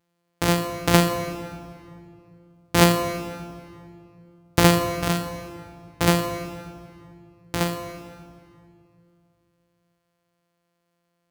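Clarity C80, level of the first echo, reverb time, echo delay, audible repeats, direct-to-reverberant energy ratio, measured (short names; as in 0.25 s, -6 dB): 8.5 dB, none, 2.4 s, none, none, 7.0 dB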